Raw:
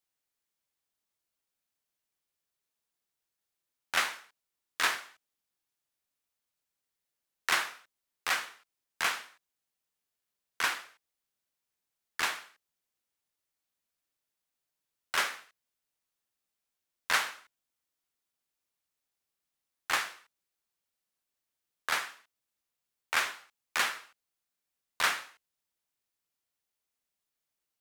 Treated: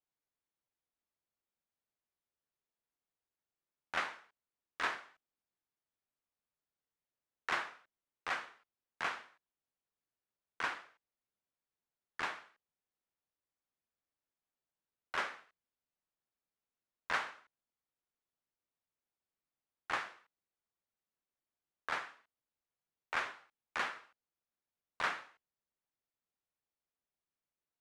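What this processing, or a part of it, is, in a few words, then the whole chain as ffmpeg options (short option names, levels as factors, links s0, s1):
through cloth: -af "lowpass=7800,highshelf=f=2700:g=-15.5,volume=0.75"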